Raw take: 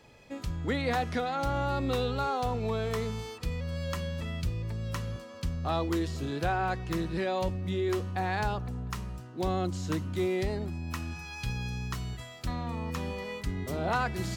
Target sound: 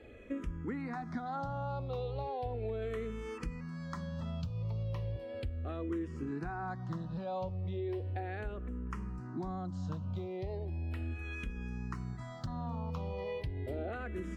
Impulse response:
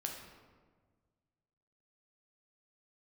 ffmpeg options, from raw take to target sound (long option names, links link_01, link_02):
-filter_complex "[0:a]asetnsamples=nb_out_samples=441:pad=0,asendcmd='2.82 lowpass f 1800;4.83 lowpass f 1000',lowpass=frequency=1000:poles=1,acompressor=threshold=-41dB:ratio=6,asplit=2[link_01][link_02];[link_02]afreqshift=-0.36[link_03];[link_01][link_03]amix=inputs=2:normalize=1,volume=8dB"